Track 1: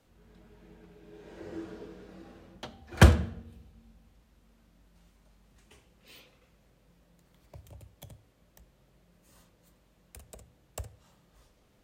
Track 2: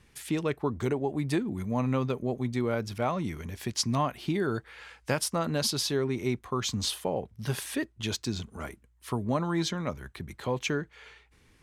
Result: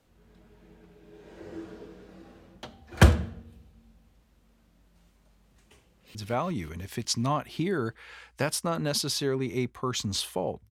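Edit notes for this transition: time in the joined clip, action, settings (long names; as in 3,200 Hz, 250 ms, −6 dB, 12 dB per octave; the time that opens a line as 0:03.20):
track 1
0:05.89–0:06.15: delay throw 180 ms, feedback 75%, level −2 dB
0:06.15: continue with track 2 from 0:02.84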